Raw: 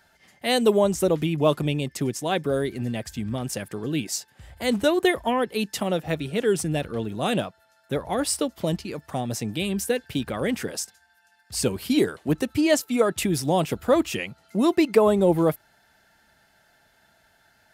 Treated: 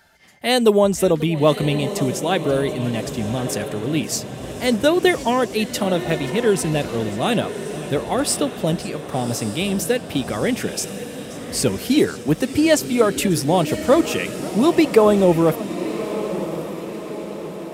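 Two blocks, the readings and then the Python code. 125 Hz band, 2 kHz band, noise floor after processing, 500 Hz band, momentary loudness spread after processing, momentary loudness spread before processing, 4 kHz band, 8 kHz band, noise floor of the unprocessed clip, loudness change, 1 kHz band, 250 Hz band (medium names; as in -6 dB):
+5.0 dB, +5.0 dB, -33 dBFS, +5.0 dB, 11 LU, 11 LU, +5.0 dB, +5.0 dB, -62 dBFS, +4.5 dB, +5.0 dB, +5.0 dB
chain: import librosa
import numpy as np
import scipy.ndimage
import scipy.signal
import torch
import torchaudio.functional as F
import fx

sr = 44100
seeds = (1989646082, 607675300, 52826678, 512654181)

y = fx.echo_diffused(x, sr, ms=1153, feedback_pct=54, wet_db=-11)
y = fx.echo_warbled(y, sr, ms=535, feedback_pct=67, rate_hz=2.8, cents=175, wet_db=-19)
y = y * 10.0 ** (4.5 / 20.0)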